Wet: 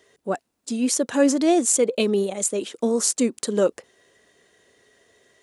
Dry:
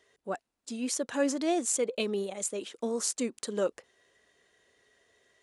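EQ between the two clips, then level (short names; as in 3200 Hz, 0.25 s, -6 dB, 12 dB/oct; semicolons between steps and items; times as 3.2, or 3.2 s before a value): HPF 140 Hz 6 dB/oct; low shelf 470 Hz +9 dB; high shelf 5800 Hz +6 dB; +5.5 dB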